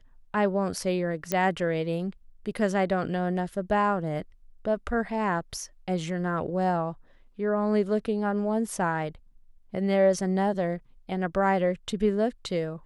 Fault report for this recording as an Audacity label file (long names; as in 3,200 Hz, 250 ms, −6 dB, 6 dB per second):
1.320000	1.320000	click −11 dBFS